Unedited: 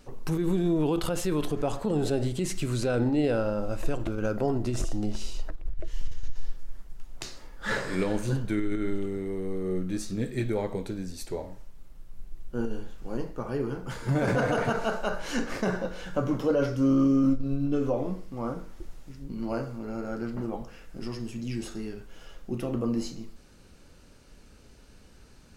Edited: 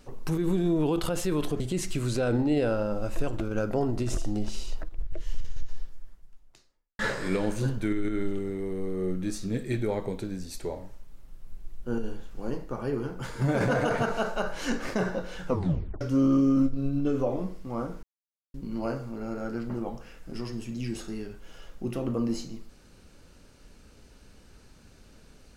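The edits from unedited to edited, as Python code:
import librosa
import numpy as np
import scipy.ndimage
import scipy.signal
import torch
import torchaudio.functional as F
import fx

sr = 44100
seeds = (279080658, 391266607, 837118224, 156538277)

y = fx.edit(x, sr, fx.cut(start_s=1.6, length_s=0.67),
    fx.fade_out_span(start_s=6.27, length_s=1.39, curve='qua'),
    fx.tape_stop(start_s=16.12, length_s=0.56),
    fx.silence(start_s=18.7, length_s=0.51), tone=tone)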